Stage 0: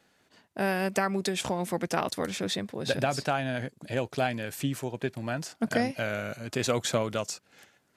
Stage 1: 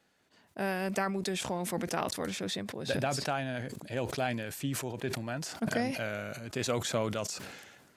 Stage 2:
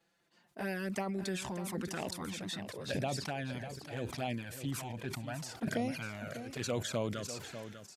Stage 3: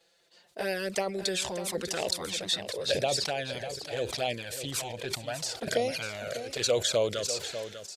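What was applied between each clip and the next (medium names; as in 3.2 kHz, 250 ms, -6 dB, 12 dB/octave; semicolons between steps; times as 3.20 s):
decay stretcher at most 42 dB/s; trim -5 dB
touch-sensitive flanger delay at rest 6 ms, full sweep at -26.5 dBFS; delay 596 ms -11 dB; trim -2 dB
ten-band graphic EQ 125 Hz -5 dB, 250 Hz -10 dB, 500 Hz +10 dB, 1 kHz -4 dB, 4 kHz +9 dB, 8 kHz +5 dB; trim +4.5 dB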